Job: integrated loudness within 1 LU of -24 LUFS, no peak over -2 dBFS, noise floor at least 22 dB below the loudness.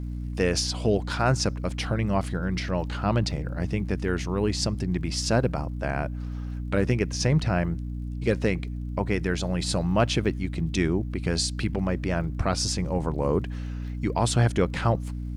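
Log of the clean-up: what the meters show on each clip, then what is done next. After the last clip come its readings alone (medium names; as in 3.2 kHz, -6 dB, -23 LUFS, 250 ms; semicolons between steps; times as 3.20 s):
tick rate 28 per s; hum 60 Hz; highest harmonic 300 Hz; hum level -30 dBFS; loudness -26.5 LUFS; peak level -10.5 dBFS; loudness target -24.0 LUFS
-> de-click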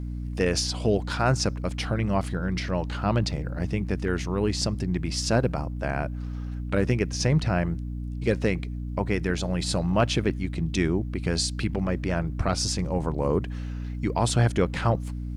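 tick rate 0.46 per s; hum 60 Hz; highest harmonic 300 Hz; hum level -30 dBFS
-> de-hum 60 Hz, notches 5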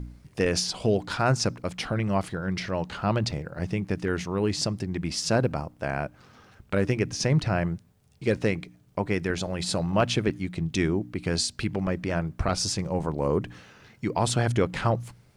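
hum not found; loudness -27.5 LUFS; peak level -11.0 dBFS; loudness target -24.0 LUFS
-> trim +3.5 dB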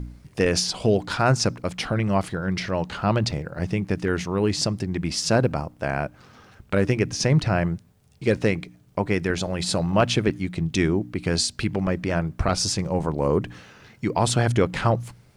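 loudness -24.0 LUFS; peak level -7.5 dBFS; noise floor -55 dBFS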